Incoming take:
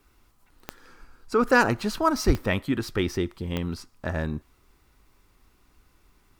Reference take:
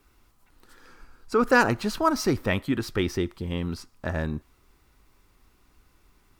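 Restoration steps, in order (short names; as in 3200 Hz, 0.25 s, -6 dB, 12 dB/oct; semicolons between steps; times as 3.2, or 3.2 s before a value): de-click; 2.26–2.38 HPF 140 Hz 24 dB/oct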